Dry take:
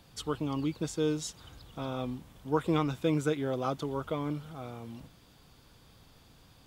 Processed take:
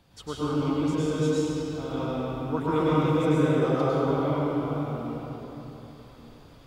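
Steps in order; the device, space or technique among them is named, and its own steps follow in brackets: swimming-pool hall (reverb RT60 3.9 s, pre-delay 97 ms, DRR -9 dB; high shelf 4200 Hz -6.5 dB); gain -2.5 dB

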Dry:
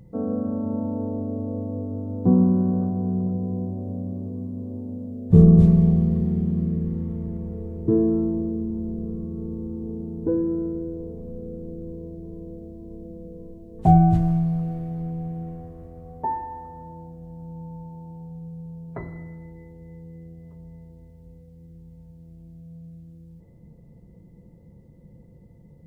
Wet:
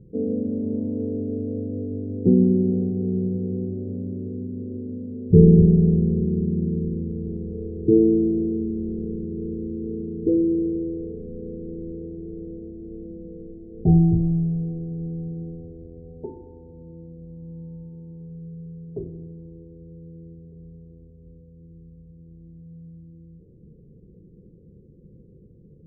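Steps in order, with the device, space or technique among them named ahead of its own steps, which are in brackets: under water (LPF 430 Hz 24 dB/oct; bell 410 Hz +12 dB 0.56 oct); gain -1 dB

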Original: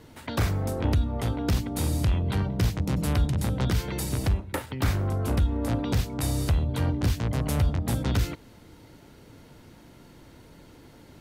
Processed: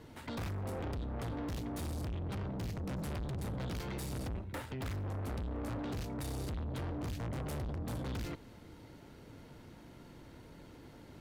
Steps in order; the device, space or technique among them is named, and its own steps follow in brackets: tube preamp driven hard (tube stage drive 35 dB, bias 0.4; high shelf 4200 Hz -5.5 dB); gain -1.5 dB

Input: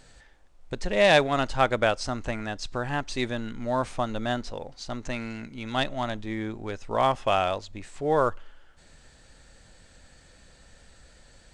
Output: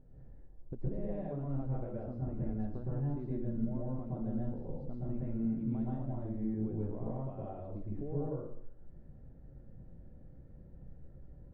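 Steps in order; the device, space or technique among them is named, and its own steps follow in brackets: television next door (compressor 5:1, threshold -34 dBFS, peak gain reduction 18 dB; LPF 330 Hz 12 dB/oct; reverb RT60 0.60 s, pre-delay 0.108 s, DRR -5.5 dB); gain -2.5 dB

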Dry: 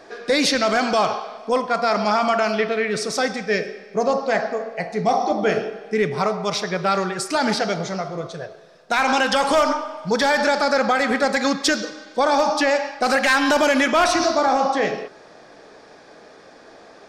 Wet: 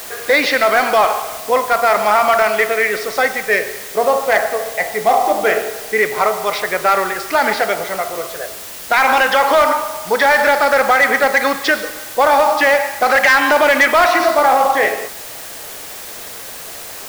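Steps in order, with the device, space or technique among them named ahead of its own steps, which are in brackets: drive-through speaker (BPF 480–2800 Hz; bell 2000 Hz +7 dB 0.23 oct; hard clip -13.5 dBFS, distortion -19 dB; white noise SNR 16 dB); gain +7.5 dB

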